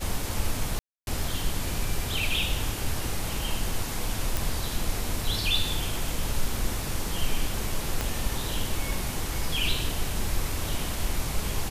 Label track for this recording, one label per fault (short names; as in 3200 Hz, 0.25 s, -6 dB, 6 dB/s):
0.790000	1.070000	gap 0.281 s
4.370000	4.370000	pop
8.010000	8.010000	pop -12 dBFS